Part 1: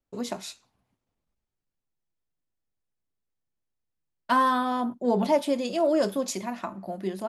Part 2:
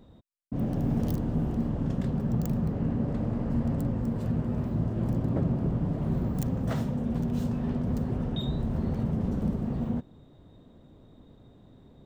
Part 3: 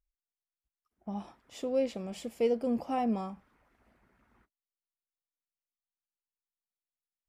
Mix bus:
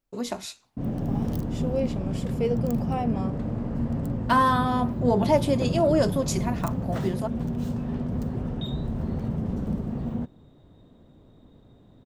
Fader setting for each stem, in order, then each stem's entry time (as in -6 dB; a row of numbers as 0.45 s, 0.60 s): +1.5 dB, 0.0 dB, +1.5 dB; 0.00 s, 0.25 s, 0.00 s